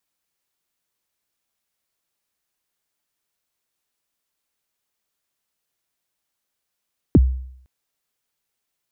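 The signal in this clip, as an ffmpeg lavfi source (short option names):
-f lavfi -i "aevalsrc='0.501*pow(10,-3*t/0.67)*sin(2*PI*(390*0.035/log(64/390)*(exp(log(64/390)*min(t,0.035)/0.035)-1)+64*max(t-0.035,0)))':d=0.51:s=44100"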